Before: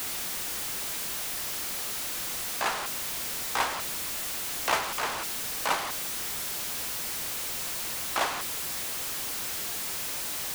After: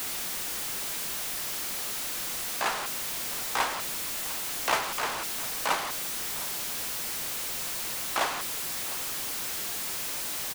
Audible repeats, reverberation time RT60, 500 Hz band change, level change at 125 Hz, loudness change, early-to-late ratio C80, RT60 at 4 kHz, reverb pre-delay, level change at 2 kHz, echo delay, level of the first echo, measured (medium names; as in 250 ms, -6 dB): 1, no reverb, 0.0 dB, -1.0 dB, 0.0 dB, no reverb, no reverb, no reverb, 0.0 dB, 705 ms, -18.0 dB